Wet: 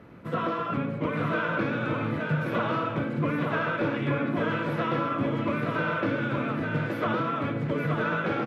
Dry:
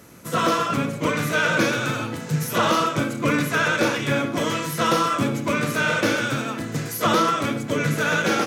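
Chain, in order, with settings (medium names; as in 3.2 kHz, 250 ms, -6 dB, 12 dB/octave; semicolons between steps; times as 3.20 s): compression 4:1, threshold -24 dBFS, peak gain reduction 8 dB; distance through air 470 m; delay 872 ms -4 dB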